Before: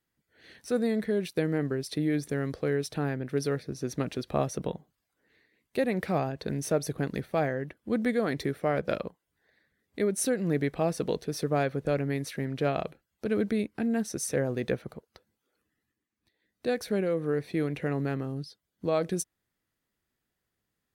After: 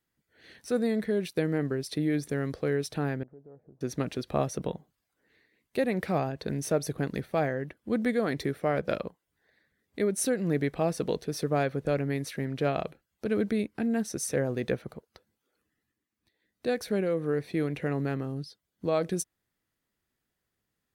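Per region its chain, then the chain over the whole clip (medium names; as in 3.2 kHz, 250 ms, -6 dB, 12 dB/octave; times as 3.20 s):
3.23–3.81 s: four-pole ladder low-pass 940 Hz, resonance 45% + compression 2.5:1, threshold -54 dBFS
whole clip: none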